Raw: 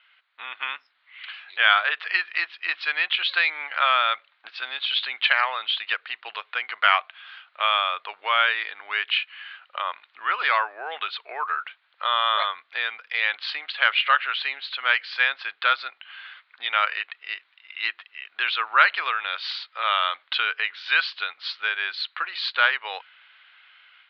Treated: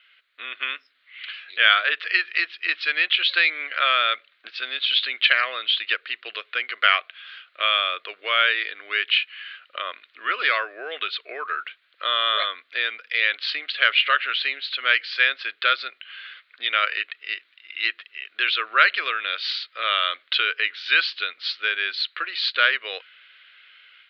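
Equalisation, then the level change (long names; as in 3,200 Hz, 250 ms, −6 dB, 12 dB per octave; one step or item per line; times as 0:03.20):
low-shelf EQ 330 Hz +8.5 dB
phaser with its sweep stopped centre 360 Hz, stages 4
+4.5 dB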